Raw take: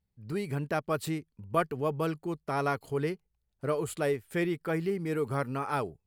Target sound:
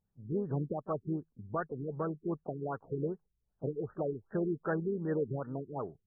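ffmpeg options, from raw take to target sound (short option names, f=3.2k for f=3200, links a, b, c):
-filter_complex "[0:a]equalizer=f=71:w=2.1:g=-8.5,alimiter=limit=-24dB:level=0:latency=1:release=349,crystalizer=i=3.5:c=0,asplit=2[a][b];[b]asetrate=52444,aresample=44100,atempo=0.840896,volume=-14dB[c];[a][c]amix=inputs=2:normalize=0,afftfilt=real='re*lt(b*sr/1024,410*pow(1900/410,0.5+0.5*sin(2*PI*2.6*pts/sr)))':imag='im*lt(b*sr/1024,410*pow(1900/410,0.5+0.5*sin(2*PI*2.6*pts/sr)))':win_size=1024:overlap=0.75"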